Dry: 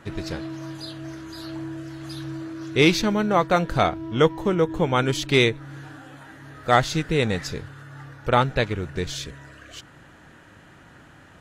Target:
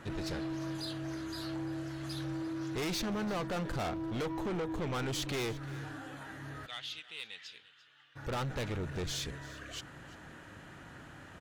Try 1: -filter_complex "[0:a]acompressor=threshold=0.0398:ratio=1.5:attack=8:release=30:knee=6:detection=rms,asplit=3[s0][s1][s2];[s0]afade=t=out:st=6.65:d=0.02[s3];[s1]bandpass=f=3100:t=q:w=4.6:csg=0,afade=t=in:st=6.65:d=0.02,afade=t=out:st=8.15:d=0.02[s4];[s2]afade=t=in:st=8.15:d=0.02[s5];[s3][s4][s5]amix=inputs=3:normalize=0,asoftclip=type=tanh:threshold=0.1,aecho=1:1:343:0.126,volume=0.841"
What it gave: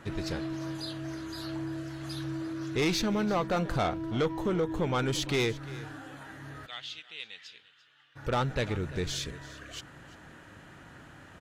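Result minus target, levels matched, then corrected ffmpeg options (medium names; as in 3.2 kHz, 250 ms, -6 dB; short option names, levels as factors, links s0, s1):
saturation: distortion -8 dB
-filter_complex "[0:a]acompressor=threshold=0.0398:ratio=1.5:attack=8:release=30:knee=6:detection=rms,asplit=3[s0][s1][s2];[s0]afade=t=out:st=6.65:d=0.02[s3];[s1]bandpass=f=3100:t=q:w=4.6:csg=0,afade=t=in:st=6.65:d=0.02,afade=t=out:st=8.15:d=0.02[s4];[s2]afade=t=in:st=8.15:d=0.02[s5];[s3][s4][s5]amix=inputs=3:normalize=0,asoftclip=type=tanh:threshold=0.0282,aecho=1:1:343:0.126,volume=0.841"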